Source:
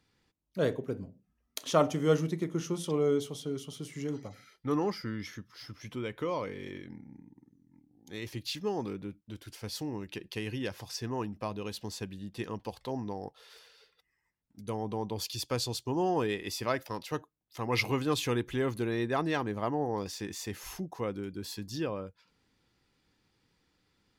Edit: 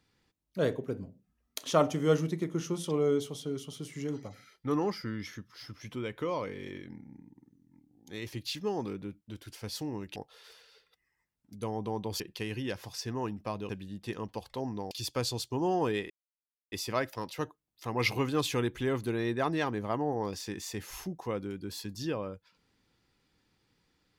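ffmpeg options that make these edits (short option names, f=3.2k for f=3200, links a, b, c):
-filter_complex "[0:a]asplit=6[a][b][c][d][e][f];[a]atrim=end=10.162[g];[b]atrim=start=13.218:end=15.262[h];[c]atrim=start=10.158:end=11.652[i];[d]atrim=start=11.998:end=13.222[j];[e]atrim=start=15.258:end=16.45,asetpts=PTS-STARTPTS,afade=t=out:st=1.188:d=0.004:c=hsin,apad=pad_dur=0.62[k];[f]atrim=start=16.45,asetpts=PTS-STARTPTS,afade=t=in:d=0.004:c=hsin[l];[g][h]acrossfade=d=0.004:c1=hsin:c2=hsin[m];[m][i]acrossfade=d=0.004:c1=hsin:c2=hsin[n];[n][j]acrossfade=d=0.004:c1=hsin:c2=hsin[o];[k][l]concat=n=2:v=0:a=1[p];[o][p]acrossfade=d=0.004:c1=hsin:c2=hsin"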